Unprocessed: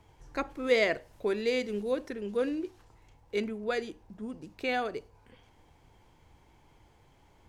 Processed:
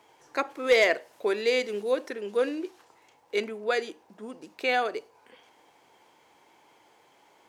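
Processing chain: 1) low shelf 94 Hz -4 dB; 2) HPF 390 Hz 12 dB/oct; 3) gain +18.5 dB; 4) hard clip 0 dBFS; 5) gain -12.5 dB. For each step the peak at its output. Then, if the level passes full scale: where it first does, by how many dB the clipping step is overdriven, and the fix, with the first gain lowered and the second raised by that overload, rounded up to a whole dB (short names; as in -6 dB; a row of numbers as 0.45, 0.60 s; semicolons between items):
-13.0, -14.0, +4.5, 0.0, -12.5 dBFS; step 3, 4.5 dB; step 3 +13.5 dB, step 5 -7.5 dB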